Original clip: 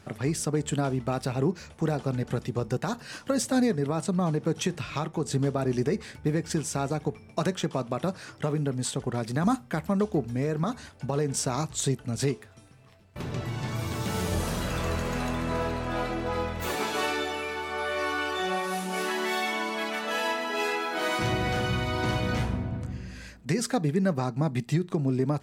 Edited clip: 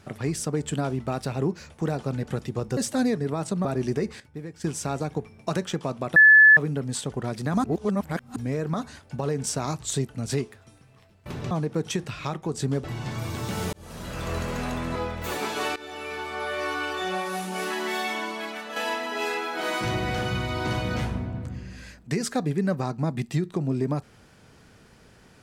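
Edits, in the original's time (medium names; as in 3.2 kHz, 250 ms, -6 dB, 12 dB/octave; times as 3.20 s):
2.77–3.34 s: delete
4.22–5.55 s: move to 13.41 s
6.10–6.54 s: gain -10.5 dB
8.06–8.47 s: bleep 1.73 kHz -9.5 dBFS
9.54–10.26 s: reverse
14.30–14.94 s: fade in
15.53–16.34 s: delete
17.14–17.53 s: fade in, from -18 dB
19.52–20.14 s: fade out, to -6.5 dB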